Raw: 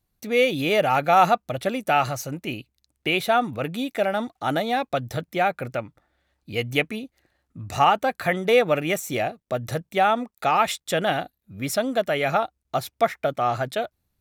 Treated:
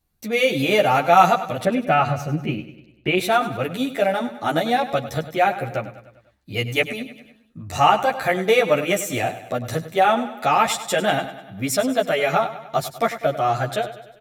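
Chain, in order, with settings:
0:01.64–0:03.18: bass and treble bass +7 dB, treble −14 dB
on a send: repeating echo 99 ms, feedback 54%, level −13.5 dB
on the sum: dynamic equaliser 7,500 Hz, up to +4 dB, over −47 dBFS, Q 1.8
barber-pole flanger 10.6 ms −0.38 Hz
level +5.5 dB

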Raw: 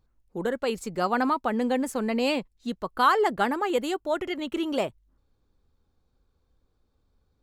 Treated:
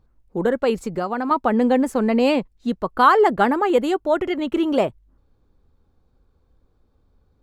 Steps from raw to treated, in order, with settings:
high-shelf EQ 2,300 Hz −10 dB
0:00.75–0:01.31: downward compressor 6 to 1, threshold −30 dBFS, peak gain reduction 8.5 dB
level +8.5 dB

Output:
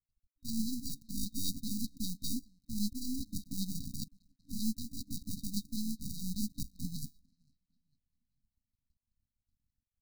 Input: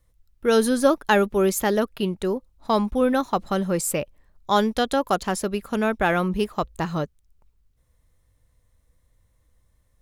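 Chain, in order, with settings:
flanger 0.22 Hz, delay 2.7 ms, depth 2.6 ms, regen −87%
downward expander −54 dBFS
reversed playback
downward compressor 6 to 1, threshold −34 dBFS, peak gain reduction 16.5 dB
reversed playback
hollow resonant body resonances 220/380/2,900 Hz, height 8 dB, ringing for 50 ms
decimation without filtering 42×
high-shelf EQ 6,700 Hz +6.5 dB
feedback echo with a band-pass in the loop 452 ms, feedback 51%, band-pass 870 Hz, level −23.5 dB
half-wave rectification
brick-wall band-stop 290–3,800 Hz
auto-filter bell 5.1 Hz 330–4,400 Hz +9 dB
level +2 dB

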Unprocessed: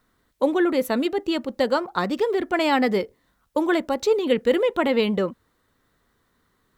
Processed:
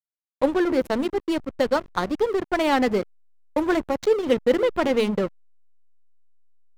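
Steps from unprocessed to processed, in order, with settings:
hum removal 114.4 Hz, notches 3
slack as between gear wheels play −21.5 dBFS
level +1 dB

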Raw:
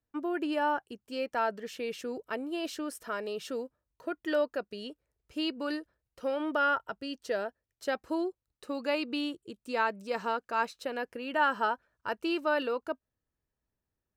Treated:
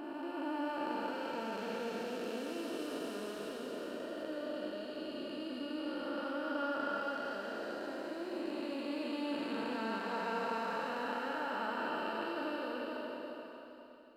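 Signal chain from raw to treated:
spectrum smeared in time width 1,020 ms
four-comb reverb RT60 3.2 s, combs from 32 ms, DRR 0.5 dB

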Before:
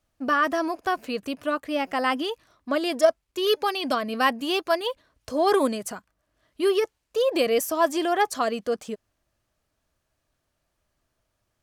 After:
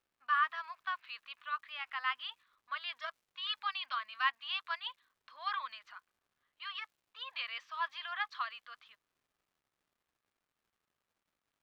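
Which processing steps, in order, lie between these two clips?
elliptic band-pass filter 1,100–3,900 Hz, stop band 50 dB
surface crackle 340 per second −57 dBFS
one half of a high-frequency compander decoder only
level −7 dB

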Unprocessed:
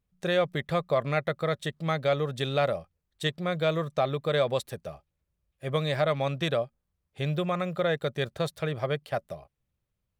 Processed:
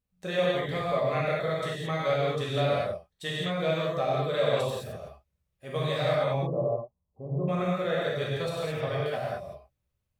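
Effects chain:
0:06.24–0:07.48: Butterworth low-pass 1,100 Hz 96 dB per octave
reverb whose tail is shaped and stops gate 240 ms flat, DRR −7 dB
level −7.5 dB

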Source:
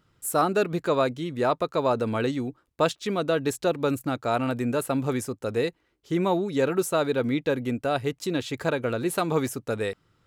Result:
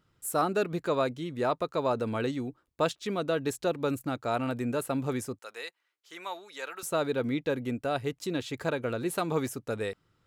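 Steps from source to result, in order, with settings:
0:05.39–0:06.83: high-pass filter 1,100 Hz 12 dB per octave
level −4.5 dB

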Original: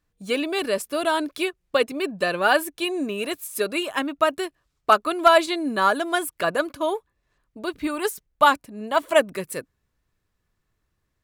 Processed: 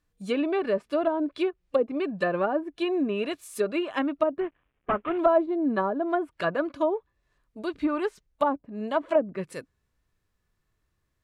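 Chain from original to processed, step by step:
0:04.40–0:05.18: variable-slope delta modulation 16 kbit/s
harmonic and percussive parts rebalanced harmonic +7 dB
treble cut that deepens with the level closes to 580 Hz, closed at −12 dBFS
level −6 dB

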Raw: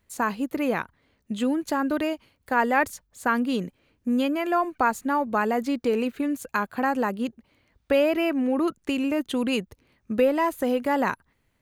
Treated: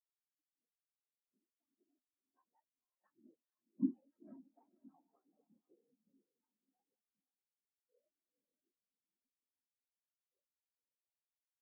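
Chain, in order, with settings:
source passing by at 0:03.86, 23 m/s, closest 1.5 metres
harmonic generator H 6 −6 dB, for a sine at −17 dBFS
downward compressor 4 to 1, threshold −48 dBFS, peak gain reduction 24 dB
Butterworth high-pass 220 Hz
random phases in short frames
feedback delay with all-pass diffusion 490 ms, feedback 61%, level −3 dB
every bin expanded away from the loudest bin 4 to 1
level +11.5 dB

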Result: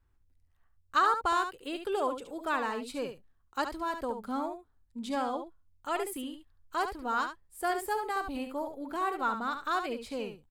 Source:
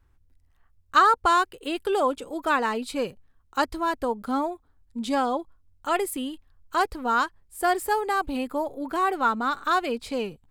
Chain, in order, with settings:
single-tap delay 71 ms −8 dB
level −8 dB

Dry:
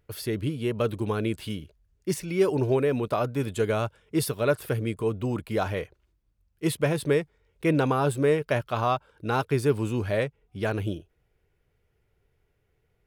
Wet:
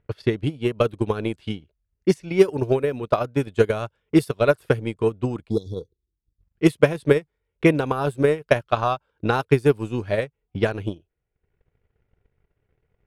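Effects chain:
time-frequency box erased 0:05.50–0:06.41, 500–3,300 Hz
low-pass that shuts in the quiet parts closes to 2,600 Hz, open at −20 dBFS
transient designer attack +12 dB, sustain −10 dB
level −1 dB

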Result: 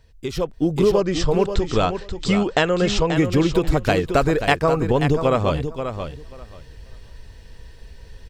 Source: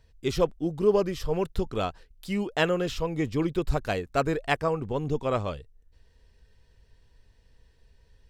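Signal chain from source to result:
downward compressor 6 to 1, threshold −32 dBFS, peak gain reduction 15 dB
0:01.00–0:03.16: Chebyshev low-pass filter 8,200 Hz, order 10
repeating echo 534 ms, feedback 17%, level −8.5 dB
automatic gain control gain up to 11.5 dB
level +5.5 dB

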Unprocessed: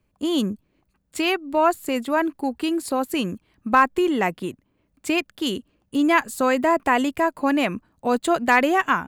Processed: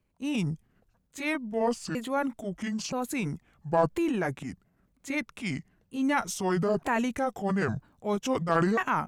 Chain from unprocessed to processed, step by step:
pitch shifter swept by a sawtooth −9 semitones, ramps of 975 ms
transient designer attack −3 dB, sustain +7 dB
level −6 dB

